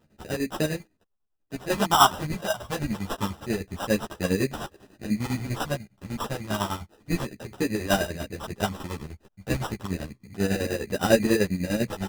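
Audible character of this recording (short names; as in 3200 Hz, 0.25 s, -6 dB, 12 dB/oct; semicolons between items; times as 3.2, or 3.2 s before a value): phasing stages 8, 0.29 Hz, lowest notch 380–1500 Hz; aliases and images of a low sample rate 2200 Hz, jitter 0%; chopped level 10 Hz, depth 65%, duty 55%; a shimmering, thickened sound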